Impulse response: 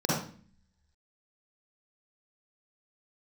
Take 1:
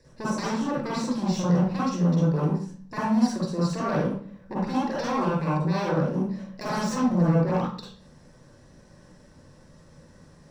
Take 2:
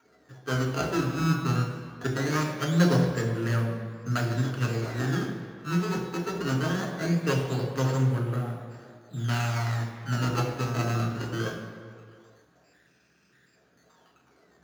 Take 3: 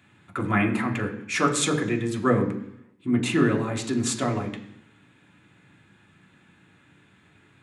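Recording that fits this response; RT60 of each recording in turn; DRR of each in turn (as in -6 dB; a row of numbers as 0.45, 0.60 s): 1; 0.45, 2.0, 0.70 s; -7.0, 0.5, 0.0 dB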